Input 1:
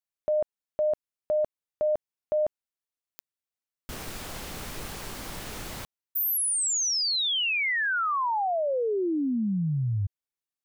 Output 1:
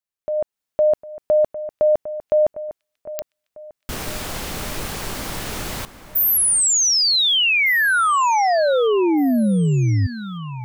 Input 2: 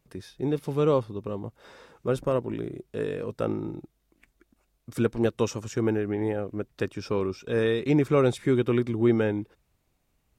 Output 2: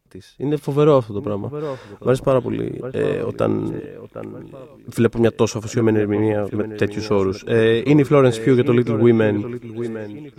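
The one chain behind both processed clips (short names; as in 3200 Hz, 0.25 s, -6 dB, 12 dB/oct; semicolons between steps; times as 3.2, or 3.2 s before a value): AGC gain up to 9.5 dB; on a send: echo with dull and thin repeats by turns 0.754 s, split 2500 Hz, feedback 56%, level -13 dB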